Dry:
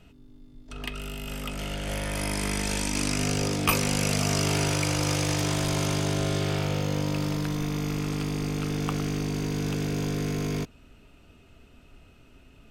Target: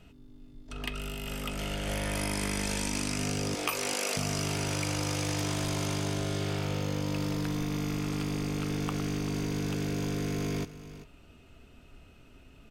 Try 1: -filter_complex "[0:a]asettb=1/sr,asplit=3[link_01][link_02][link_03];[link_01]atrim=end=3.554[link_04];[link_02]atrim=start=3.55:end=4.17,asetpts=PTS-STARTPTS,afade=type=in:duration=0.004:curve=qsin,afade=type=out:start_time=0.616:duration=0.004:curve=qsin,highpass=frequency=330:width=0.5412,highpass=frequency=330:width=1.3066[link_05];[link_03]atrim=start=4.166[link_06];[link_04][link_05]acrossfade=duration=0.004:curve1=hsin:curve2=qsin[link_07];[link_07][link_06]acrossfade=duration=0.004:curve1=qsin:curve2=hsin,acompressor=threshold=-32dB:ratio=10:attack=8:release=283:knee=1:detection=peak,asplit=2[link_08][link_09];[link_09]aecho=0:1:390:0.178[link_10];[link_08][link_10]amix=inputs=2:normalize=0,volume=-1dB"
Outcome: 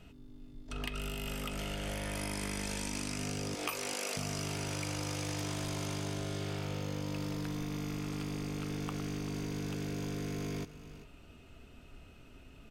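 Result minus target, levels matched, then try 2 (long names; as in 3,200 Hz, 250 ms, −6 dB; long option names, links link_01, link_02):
downward compressor: peak gain reduction +6 dB
-filter_complex "[0:a]asettb=1/sr,asplit=3[link_01][link_02][link_03];[link_01]atrim=end=3.554[link_04];[link_02]atrim=start=3.55:end=4.17,asetpts=PTS-STARTPTS,afade=type=in:duration=0.004:curve=qsin,afade=type=out:start_time=0.616:duration=0.004:curve=qsin,highpass=frequency=330:width=0.5412,highpass=frequency=330:width=1.3066[link_05];[link_03]atrim=start=4.166[link_06];[link_04][link_05]acrossfade=duration=0.004:curve1=hsin:curve2=qsin[link_07];[link_07][link_06]acrossfade=duration=0.004:curve1=qsin:curve2=hsin,acompressor=threshold=-25.5dB:ratio=10:attack=8:release=283:knee=1:detection=peak,asplit=2[link_08][link_09];[link_09]aecho=0:1:390:0.178[link_10];[link_08][link_10]amix=inputs=2:normalize=0,volume=-1dB"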